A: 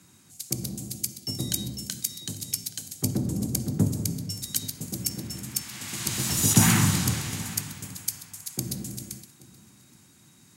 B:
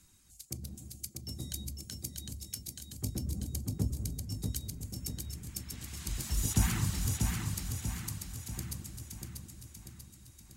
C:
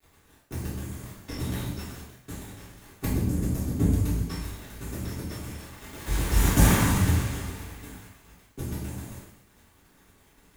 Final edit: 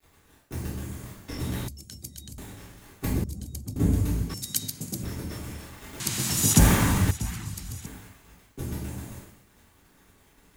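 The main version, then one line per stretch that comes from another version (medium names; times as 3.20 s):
C
1.68–2.38 s: from B
3.24–3.76 s: from B
4.34–5.03 s: from A
6.00–6.59 s: from A
7.11–7.86 s: from B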